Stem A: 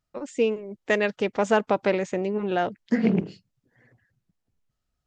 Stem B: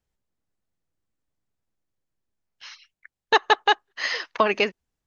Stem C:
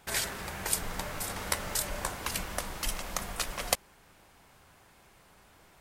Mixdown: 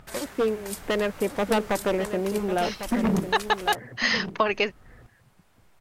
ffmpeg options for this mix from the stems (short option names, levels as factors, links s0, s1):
-filter_complex "[0:a]lowpass=1900,acompressor=mode=upward:threshold=0.0398:ratio=2.5,aeval=exprs='0.141*(abs(mod(val(0)/0.141+3,4)-2)-1)':c=same,volume=1,asplit=2[s0][s1];[s1]volume=0.299[s2];[1:a]dynaudnorm=f=140:g=3:m=5.62,volume=0.376[s3];[2:a]asoftclip=type=tanh:threshold=0.299,volume=0.501[s4];[s2]aecho=0:1:1100:1[s5];[s0][s3][s4][s5]amix=inputs=4:normalize=0"